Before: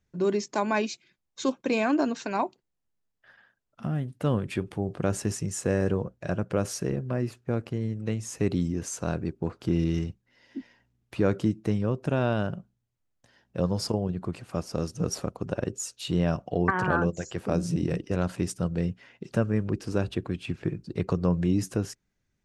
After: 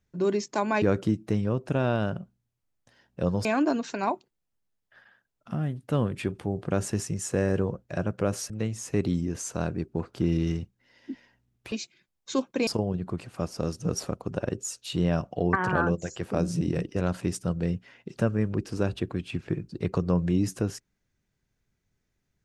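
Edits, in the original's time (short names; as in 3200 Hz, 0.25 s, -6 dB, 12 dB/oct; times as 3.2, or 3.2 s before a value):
0.82–1.77 swap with 11.19–13.82
6.82–7.97 cut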